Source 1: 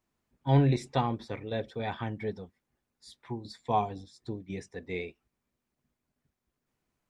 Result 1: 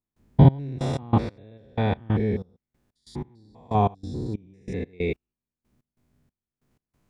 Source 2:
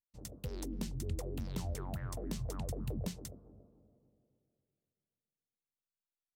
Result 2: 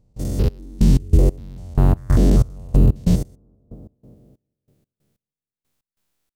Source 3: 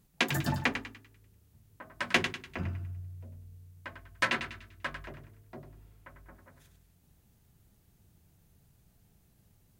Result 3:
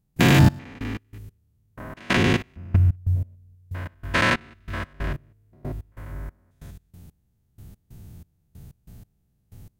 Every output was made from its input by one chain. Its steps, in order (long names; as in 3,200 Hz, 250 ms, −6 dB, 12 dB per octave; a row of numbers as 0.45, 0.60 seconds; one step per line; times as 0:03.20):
spectrum averaged block by block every 200 ms
low-shelf EQ 380 Hz +9.5 dB
gate pattern ".xx..x.x...x" 93 BPM −24 dB
normalise the peak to −3 dBFS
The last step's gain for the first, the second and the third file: +9.0, +20.5, +14.0 decibels